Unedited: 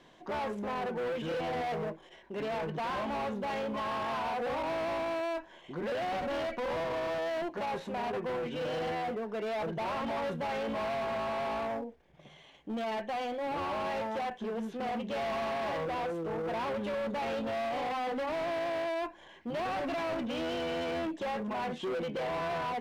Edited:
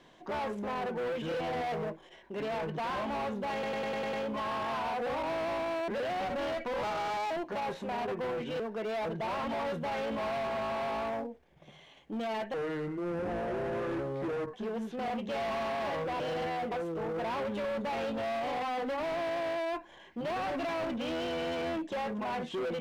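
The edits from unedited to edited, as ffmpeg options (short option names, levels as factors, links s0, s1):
-filter_complex "[0:a]asplit=15[s0][s1][s2][s3][s4][s5][s6][s7][s8][s9][s10][s11][s12][s13][s14];[s0]atrim=end=3.632[s15];[s1]atrim=start=3.528:end=3.632[s16];[s2]atrim=start=3.528:end=3.632[s17];[s3]atrim=start=3.528:end=3.632[s18];[s4]atrim=start=3.528:end=3.632[s19];[s5]atrim=start=3.528:end=3.632[s20];[s6]atrim=start=3.528:end=5.282[s21];[s7]atrim=start=5.798:end=6.754[s22];[s8]atrim=start=6.75:end=7.36,asetpts=PTS-STARTPTS,asetrate=56448,aresample=44100,atrim=end_sample=21016,asetpts=PTS-STARTPTS[s23];[s9]atrim=start=7.356:end=8.652[s24];[s10]atrim=start=9.168:end=13.114[s25];[s11]atrim=start=13.11:end=14.35,asetpts=PTS-STARTPTS,asetrate=27342,aresample=44100[s26];[s12]atrim=start=14.346:end=16.012[s27];[s13]atrim=start=8.648:end=9.172[s28];[s14]atrim=start=16.008[s29];[s15][s16]acrossfade=d=0.004:c1=hsin:c2=hsin[s30];[s30][s17]acrossfade=d=0.004:c1=hsin:c2=hsin[s31];[s31][s18]acrossfade=d=0.004:c1=hsin:c2=hsin[s32];[s32][s19]acrossfade=d=0.004:c1=hsin:c2=hsin[s33];[s33][s20]acrossfade=d=0.004:c1=hsin:c2=hsin[s34];[s34][s21]acrossfade=d=0.004:c1=hsin:c2=hsin[s35];[s35][s22]acrossfade=d=0.004:c1=hsin:c2=hsin[s36];[s36][s23]acrossfade=d=0.004:c1=hsin:c2=hsin[s37];[s37][s24]acrossfade=d=0.004:c1=hsin:c2=hsin[s38];[s38][s25]acrossfade=d=0.004:c1=hsin:c2=hsin[s39];[s39][s26]acrossfade=d=0.004:c1=hsin:c2=hsin[s40];[s40][s27]acrossfade=d=0.004:c1=hsin:c2=hsin[s41];[s41][s28]acrossfade=d=0.004:c1=hsin:c2=hsin[s42];[s42][s29]acrossfade=d=0.004:c1=hsin:c2=hsin"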